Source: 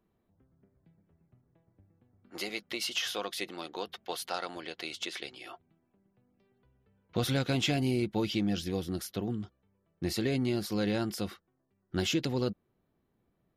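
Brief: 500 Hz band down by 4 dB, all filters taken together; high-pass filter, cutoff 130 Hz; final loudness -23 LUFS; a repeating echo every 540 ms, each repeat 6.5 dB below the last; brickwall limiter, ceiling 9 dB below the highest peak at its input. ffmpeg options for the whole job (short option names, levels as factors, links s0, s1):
-af "highpass=130,equalizer=f=500:t=o:g=-5.5,alimiter=level_in=1.19:limit=0.0631:level=0:latency=1,volume=0.841,aecho=1:1:540|1080|1620|2160|2700|3240:0.473|0.222|0.105|0.0491|0.0231|0.0109,volume=5.01"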